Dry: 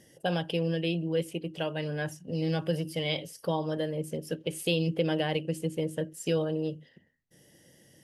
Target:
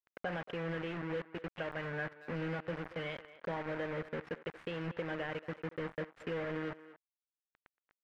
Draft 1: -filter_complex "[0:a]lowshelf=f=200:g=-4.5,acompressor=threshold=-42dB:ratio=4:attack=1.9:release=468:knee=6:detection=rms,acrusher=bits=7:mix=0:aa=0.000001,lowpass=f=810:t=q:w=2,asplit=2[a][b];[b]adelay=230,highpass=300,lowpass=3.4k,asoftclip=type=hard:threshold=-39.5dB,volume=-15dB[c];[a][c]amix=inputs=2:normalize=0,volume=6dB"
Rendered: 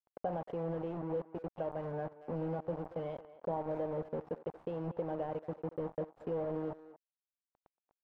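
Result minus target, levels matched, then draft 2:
2000 Hz band -17.0 dB
-filter_complex "[0:a]lowshelf=f=200:g=-4.5,acompressor=threshold=-42dB:ratio=4:attack=1.9:release=468:knee=6:detection=rms,acrusher=bits=7:mix=0:aa=0.000001,lowpass=f=1.8k:t=q:w=2,asplit=2[a][b];[b]adelay=230,highpass=300,lowpass=3.4k,asoftclip=type=hard:threshold=-39.5dB,volume=-15dB[c];[a][c]amix=inputs=2:normalize=0,volume=6dB"

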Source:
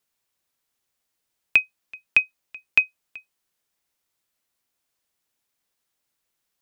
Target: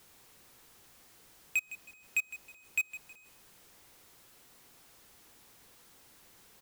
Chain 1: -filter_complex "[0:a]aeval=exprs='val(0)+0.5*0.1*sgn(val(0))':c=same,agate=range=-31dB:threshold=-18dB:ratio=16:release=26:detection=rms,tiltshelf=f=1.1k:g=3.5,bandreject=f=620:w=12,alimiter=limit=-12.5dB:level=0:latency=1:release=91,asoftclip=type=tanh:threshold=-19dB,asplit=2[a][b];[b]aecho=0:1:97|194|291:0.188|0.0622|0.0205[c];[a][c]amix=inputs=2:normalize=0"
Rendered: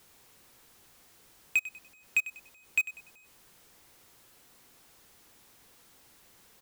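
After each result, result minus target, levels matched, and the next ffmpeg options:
echo 62 ms early; soft clip: distortion -5 dB
-filter_complex "[0:a]aeval=exprs='val(0)+0.5*0.1*sgn(val(0))':c=same,agate=range=-31dB:threshold=-18dB:ratio=16:release=26:detection=rms,tiltshelf=f=1.1k:g=3.5,bandreject=f=620:w=12,alimiter=limit=-12.5dB:level=0:latency=1:release=91,asoftclip=type=tanh:threshold=-19dB,asplit=2[a][b];[b]aecho=0:1:159|318|477:0.188|0.0622|0.0205[c];[a][c]amix=inputs=2:normalize=0"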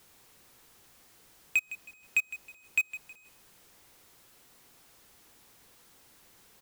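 soft clip: distortion -5 dB
-filter_complex "[0:a]aeval=exprs='val(0)+0.5*0.1*sgn(val(0))':c=same,agate=range=-31dB:threshold=-18dB:ratio=16:release=26:detection=rms,tiltshelf=f=1.1k:g=3.5,bandreject=f=620:w=12,alimiter=limit=-12.5dB:level=0:latency=1:release=91,asoftclip=type=tanh:threshold=-25dB,asplit=2[a][b];[b]aecho=0:1:159|318|477:0.188|0.0622|0.0205[c];[a][c]amix=inputs=2:normalize=0"

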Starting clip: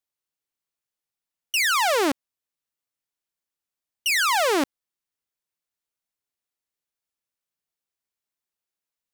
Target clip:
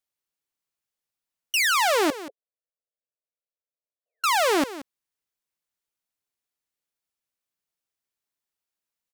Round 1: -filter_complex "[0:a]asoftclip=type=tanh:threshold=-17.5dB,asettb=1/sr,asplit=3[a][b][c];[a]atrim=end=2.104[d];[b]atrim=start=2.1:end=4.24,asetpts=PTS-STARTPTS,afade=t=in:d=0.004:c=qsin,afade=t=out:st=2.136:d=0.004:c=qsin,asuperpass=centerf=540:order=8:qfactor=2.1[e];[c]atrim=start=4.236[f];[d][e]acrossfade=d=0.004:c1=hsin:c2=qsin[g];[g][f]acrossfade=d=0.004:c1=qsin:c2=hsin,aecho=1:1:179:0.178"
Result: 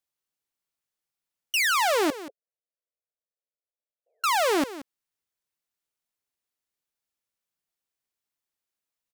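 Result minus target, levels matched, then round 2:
soft clip: distortion +20 dB
-filter_complex "[0:a]asoftclip=type=tanh:threshold=-6.5dB,asettb=1/sr,asplit=3[a][b][c];[a]atrim=end=2.104[d];[b]atrim=start=2.1:end=4.24,asetpts=PTS-STARTPTS,afade=t=in:d=0.004:c=qsin,afade=t=out:st=2.136:d=0.004:c=qsin,asuperpass=centerf=540:order=8:qfactor=2.1[e];[c]atrim=start=4.236[f];[d][e]acrossfade=d=0.004:c1=hsin:c2=qsin[g];[g][f]acrossfade=d=0.004:c1=qsin:c2=hsin,aecho=1:1:179:0.178"

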